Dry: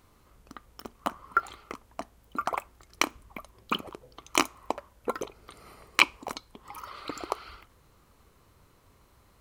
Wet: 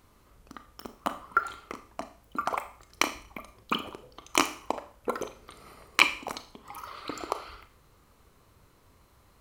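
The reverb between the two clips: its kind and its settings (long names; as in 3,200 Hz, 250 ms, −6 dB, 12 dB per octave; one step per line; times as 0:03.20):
four-comb reverb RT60 0.47 s, combs from 26 ms, DRR 9.5 dB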